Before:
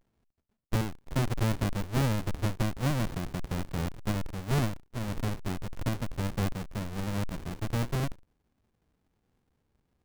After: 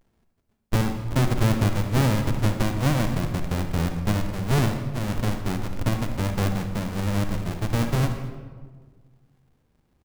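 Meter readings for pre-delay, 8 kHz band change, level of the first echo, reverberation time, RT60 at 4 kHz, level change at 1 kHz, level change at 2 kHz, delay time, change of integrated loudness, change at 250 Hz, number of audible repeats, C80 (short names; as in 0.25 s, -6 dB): 36 ms, +6.5 dB, -21.5 dB, 1.6 s, 0.90 s, +7.0 dB, +7.0 dB, 0.225 s, +7.5 dB, +7.5 dB, 1, 8.5 dB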